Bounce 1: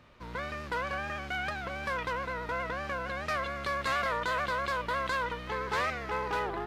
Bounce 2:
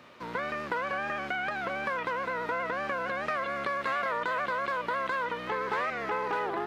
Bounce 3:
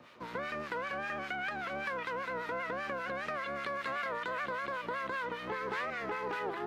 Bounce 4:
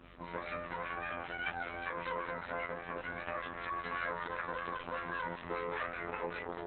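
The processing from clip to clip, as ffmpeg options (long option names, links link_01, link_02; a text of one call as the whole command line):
ffmpeg -i in.wav -filter_complex "[0:a]acompressor=threshold=-34dB:ratio=6,highpass=210,acrossover=split=2700[link_01][link_02];[link_02]acompressor=threshold=-58dB:ratio=4:attack=1:release=60[link_03];[link_01][link_03]amix=inputs=2:normalize=0,volume=7dB" out.wav
ffmpeg -i in.wav -filter_complex "[0:a]acrossover=split=560|1300[link_01][link_02][link_03];[link_02]alimiter=level_in=11dB:limit=-24dB:level=0:latency=1,volume=-11dB[link_04];[link_01][link_04][link_03]amix=inputs=3:normalize=0,acrossover=split=1100[link_05][link_06];[link_05]aeval=exprs='val(0)*(1-0.7/2+0.7/2*cos(2*PI*5.1*n/s))':channel_layout=same[link_07];[link_06]aeval=exprs='val(0)*(1-0.7/2-0.7/2*cos(2*PI*5.1*n/s))':channel_layout=same[link_08];[link_07][link_08]amix=inputs=2:normalize=0" out.wav
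ffmpeg -i in.wav -af "afftfilt=real='hypot(re,im)*cos(PI*b)':imag='0':win_size=2048:overlap=0.75,aeval=exprs='val(0)+0.001*(sin(2*PI*50*n/s)+sin(2*PI*2*50*n/s)/2+sin(2*PI*3*50*n/s)/3+sin(2*PI*4*50*n/s)/4+sin(2*PI*5*50*n/s)/5)':channel_layout=same,volume=3dB" -ar 48000 -c:a libopus -b:a 6k out.opus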